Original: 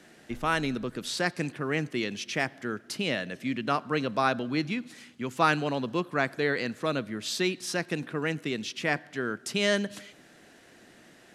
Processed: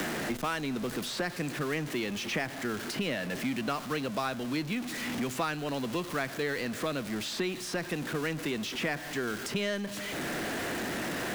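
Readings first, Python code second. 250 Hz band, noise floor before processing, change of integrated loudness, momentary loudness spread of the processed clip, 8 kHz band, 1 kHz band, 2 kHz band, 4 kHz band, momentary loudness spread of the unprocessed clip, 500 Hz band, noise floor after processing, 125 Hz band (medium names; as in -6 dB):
-1.5 dB, -56 dBFS, -3.5 dB, 2 LU, 0.0 dB, -5.0 dB, -3.0 dB, -2.0 dB, 7 LU, -3.0 dB, -40 dBFS, -2.5 dB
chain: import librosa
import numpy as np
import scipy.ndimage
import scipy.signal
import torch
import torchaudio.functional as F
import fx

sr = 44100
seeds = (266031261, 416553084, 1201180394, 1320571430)

y = x + 0.5 * 10.0 ** (-32.0 / 20.0) * np.sign(x)
y = fx.band_squash(y, sr, depth_pct=100)
y = y * 10.0 ** (-6.0 / 20.0)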